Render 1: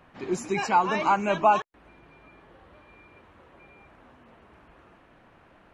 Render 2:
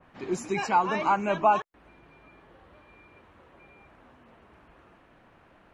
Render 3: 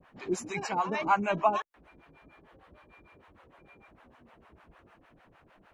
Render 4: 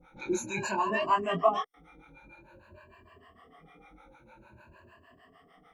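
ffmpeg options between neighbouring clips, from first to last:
-af "adynamicequalizer=threshold=0.0141:dfrequency=2600:dqfactor=0.7:tfrequency=2600:tqfactor=0.7:attack=5:release=100:ratio=0.375:range=2.5:mode=cutabove:tftype=highshelf,volume=0.841"
-filter_complex "[0:a]acrossover=split=550[s0][s1];[s0]aeval=exprs='val(0)*(1-1/2+1/2*cos(2*PI*6.6*n/s))':c=same[s2];[s1]aeval=exprs='val(0)*(1-1/2-1/2*cos(2*PI*6.6*n/s))':c=same[s3];[s2][s3]amix=inputs=2:normalize=0,volume=1.26"
-af "afftfilt=real='re*pow(10,22/40*sin(2*PI*(1.4*log(max(b,1)*sr/1024/100)/log(2)-(0.5)*(pts-256)/sr)))':imag='im*pow(10,22/40*sin(2*PI*(1.4*log(max(b,1)*sr/1024/100)/log(2)-(0.5)*(pts-256)/sr)))':win_size=1024:overlap=0.75,flanger=delay=22.5:depth=2.9:speed=0.73"

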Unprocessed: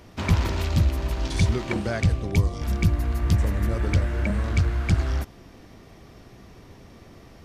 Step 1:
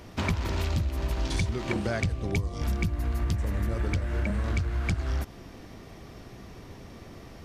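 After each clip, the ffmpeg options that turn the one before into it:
-af "acompressor=threshold=0.0501:ratio=10,volume=1.26"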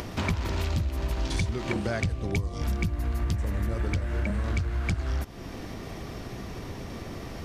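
-af "acompressor=mode=upward:threshold=0.0398:ratio=2.5"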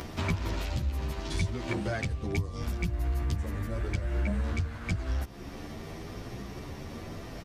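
-filter_complex "[0:a]asplit=2[s0][s1];[s1]adelay=10.7,afreqshift=0.88[s2];[s0][s2]amix=inputs=2:normalize=1"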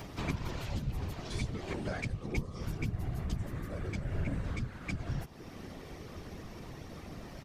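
-af "afftfilt=real='hypot(re,im)*cos(2*PI*random(0))':imag='hypot(re,im)*sin(2*PI*random(1))':win_size=512:overlap=0.75,volume=1.12"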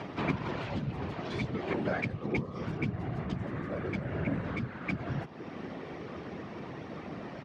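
-af "highpass=160,lowpass=2600,volume=2.24"

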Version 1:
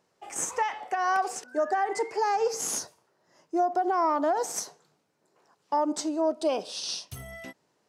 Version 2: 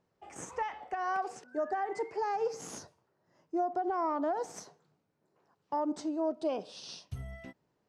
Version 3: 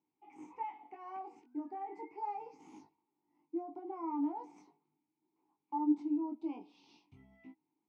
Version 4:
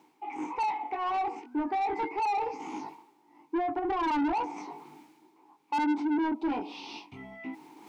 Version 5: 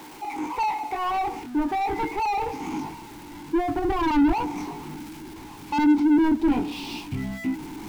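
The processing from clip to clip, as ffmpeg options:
-af "aemphasis=mode=reproduction:type=bsi,volume=0.422"
-filter_complex "[0:a]flanger=delay=19:depth=2.1:speed=0.38,asplit=3[s0][s1][s2];[s0]bandpass=f=300:t=q:w=8,volume=1[s3];[s1]bandpass=f=870:t=q:w=8,volume=0.501[s4];[s2]bandpass=f=2240:t=q:w=8,volume=0.355[s5];[s3][s4][s5]amix=inputs=3:normalize=0,volume=2"
-filter_complex "[0:a]areverse,acompressor=mode=upward:threshold=0.002:ratio=2.5,areverse,asplit=2[s0][s1];[s1]highpass=f=720:p=1,volume=31.6,asoftclip=type=tanh:threshold=0.0944[s2];[s0][s2]amix=inputs=2:normalize=0,lowpass=f=2300:p=1,volume=0.501"
-af "aeval=exprs='val(0)+0.5*0.0075*sgn(val(0))':c=same,asubboost=boost=6:cutoff=220,volume=1.68"

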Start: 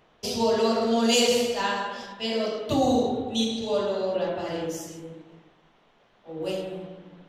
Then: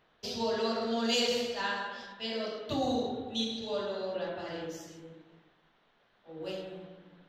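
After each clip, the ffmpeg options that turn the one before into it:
-af "equalizer=f=1600:t=o:w=0.67:g=6,equalizer=f=4000:t=o:w=0.67:g=6,equalizer=f=10000:t=o:w=0.67:g=-11,volume=0.355"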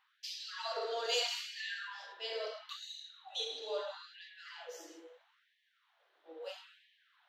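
-af "afftfilt=real='re*gte(b*sr/1024,280*pow(1700/280,0.5+0.5*sin(2*PI*0.76*pts/sr)))':imag='im*gte(b*sr/1024,280*pow(1700/280,0.5+0.5*sin(2*PI*0.76*pts/sr)))':win_size=1024:overlap=0.75,volume=0.668"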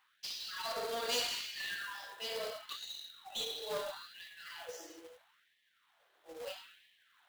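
-af "aeval=exprs='clip(val(0),-1,0.0106)':c=same,highpass=f=220:p=1,acrusher=bits=2:mode=log:mix=0:aa=0.000001,volume=1.19"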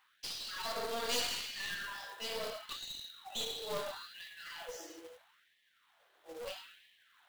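-af "aeval=exprs='clip(val(0),-1,0.00562)':c=same,volume=1.26"

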